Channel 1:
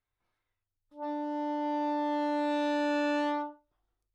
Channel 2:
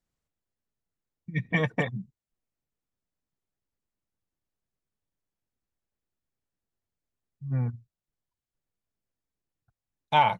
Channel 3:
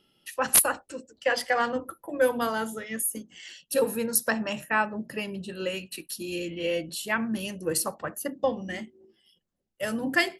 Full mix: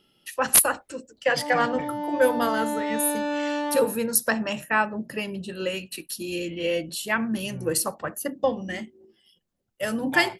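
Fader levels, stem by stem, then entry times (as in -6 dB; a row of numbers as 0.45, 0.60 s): +2.0, -11.0, +2.5 dB; 0.40, 0.00, 0.00 s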